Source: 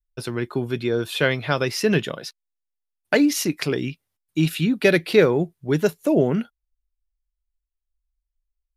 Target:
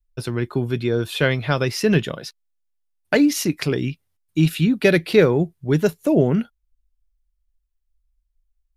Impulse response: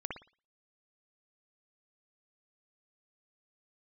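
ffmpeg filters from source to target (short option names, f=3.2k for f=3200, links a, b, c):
-af "lowshelf=f=130:g=10.5"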